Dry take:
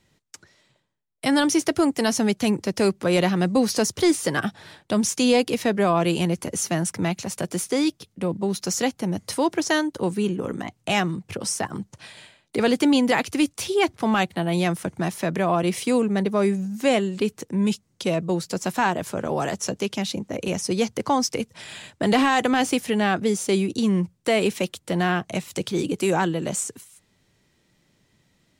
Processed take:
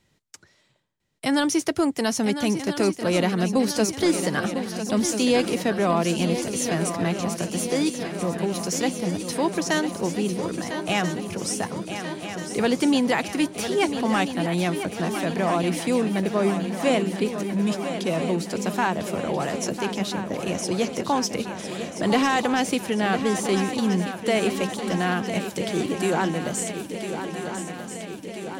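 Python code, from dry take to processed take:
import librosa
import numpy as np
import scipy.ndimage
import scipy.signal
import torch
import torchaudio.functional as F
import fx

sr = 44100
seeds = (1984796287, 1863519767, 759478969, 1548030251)

y = fx.echo_swing(x, sr, ms=1335, ratio=3, feedback_pct=65, wet_db=-9.5)
y = F.gain(torch.from_numpy(y), -2.0).numpy()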